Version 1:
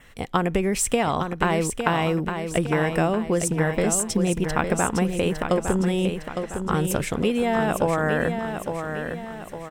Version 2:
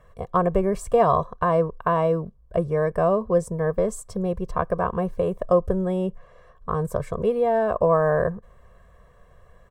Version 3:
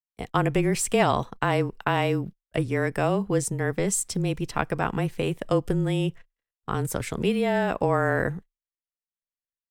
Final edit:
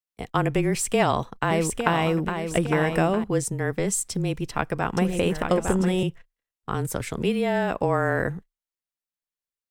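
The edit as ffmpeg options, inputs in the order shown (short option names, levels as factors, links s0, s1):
-filter_complex "[0:a]asplit=2[s0][s1];[2:a]asplit=3[s2][s3][s4];[s2]atrim=end=1.512[s5];[s0]atrim=start=1.508:end=3.242[s6];[s3]atrim=start=3.238:end=4.972[s7];[s1]atrim=start=4.968:end=6.032[s8];[s4]atrim=start=6.028[s9];[s5][s6]acrossfade=d=0.004:c1=hsin:c2=hsin[s10];[s10][s7]acrossfade=d=0.004:c1=hsin:c2=hsin[s11];[s11][s8]acrossfade=d=0.004:c1=hsin:c2=hsin[s12];[s12][s9]acrossfade=d=0.004:c1=hsin:c2=hsin"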